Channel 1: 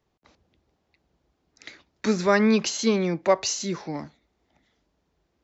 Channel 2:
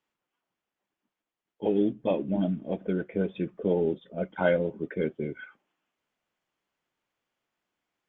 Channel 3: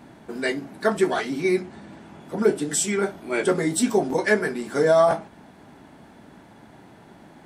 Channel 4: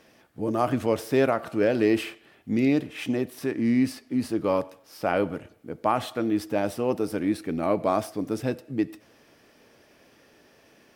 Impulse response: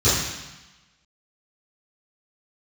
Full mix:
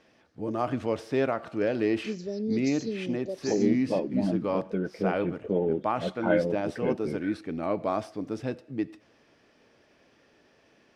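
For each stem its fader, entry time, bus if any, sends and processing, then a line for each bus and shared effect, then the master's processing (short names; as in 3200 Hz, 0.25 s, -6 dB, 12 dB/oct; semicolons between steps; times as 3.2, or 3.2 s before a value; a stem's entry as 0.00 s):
-10.0 dB, 0.00 s, no send, Chebyshev band-stop 500–4600 Hz, order 3
-1.0 dB, 1.85 s, no send, LPF 2700 Hz
off
-4.5 dB, 0.00 s, no send, dry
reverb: off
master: LPF 5800 Hz 12 dB/oct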